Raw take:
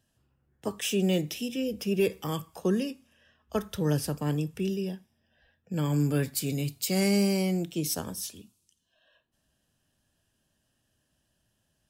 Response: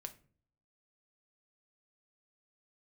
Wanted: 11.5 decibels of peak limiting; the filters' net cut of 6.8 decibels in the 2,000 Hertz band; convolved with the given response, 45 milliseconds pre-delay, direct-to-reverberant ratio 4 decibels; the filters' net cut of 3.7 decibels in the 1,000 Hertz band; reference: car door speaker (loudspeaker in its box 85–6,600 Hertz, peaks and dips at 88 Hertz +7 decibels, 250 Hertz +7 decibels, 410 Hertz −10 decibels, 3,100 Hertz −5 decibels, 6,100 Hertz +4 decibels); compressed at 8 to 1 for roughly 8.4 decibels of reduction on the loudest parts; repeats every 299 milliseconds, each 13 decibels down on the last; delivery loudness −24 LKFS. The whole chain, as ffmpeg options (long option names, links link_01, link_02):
-filter_complex "[0:a]equalizer=frequency=1000:width_type=o:gain=-3,equalizer=frequency=2000:width_type=o:gain=-7,acompressor=threshold=-30dB:ratio=8,alimiter=level_in=7dB:limit=-24dB:level=0:latency=1,volume=-7dB,aecho=1:1:299|598|897:0.224|0.0493|0.0108,asplit=2[link_01][link_02];[1:a]atrim=start_sample=2205,adelay=45[link_03];[link_02][link_03]afir=irnorm=-1:irlink=0,volume=0.5dB[link_04];[link_01][link_04]amix=inputs=2:normalize=0,highpass=85,equalizer=frequency=88:width_type=q:width=4:gain=7,equalizer=frequency=250:width_type=q:width=4:gain=7,equalizer=frequency=410:width_type=q:width=4:gain=-10,equalizer=frequency=3100:width_type=q:width=4:gain=-5,equalizer=frequency=6100:width_type=q:width=4:gain=4,lowpass=frequency=6600:width=0.5412,lowpass=frequency=6600:width=1.3066,volume=14dB"